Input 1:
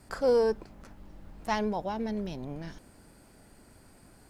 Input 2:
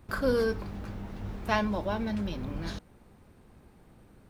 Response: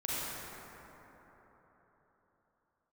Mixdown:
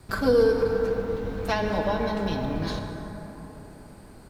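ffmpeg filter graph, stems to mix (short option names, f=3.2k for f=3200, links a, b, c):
-filter_complex "[0:a]volume=-1.5dB,asplit=2[a][b];[b]volume=-7dB[c];[1:a]adelay=2.2,volume=1.5dB,asplit=2[d][e];[e]volume=-8dB[f];[2:a]atrim=start_sample=2205[g];[c][f]amix=inputs=2:normalize=0[h];[h][g]afir=irnorm=-1:irlink=0[i];[a][d][i]amix=inputs=3:normalize=0,equalizer=f=4.1k:t=o:w=0.34:g=4.5,acrossover=split=480[j][k];[k]acompressor=threshold=-24dB:ratio=6[l];[j][l]amix=inputs=2:normalize=0"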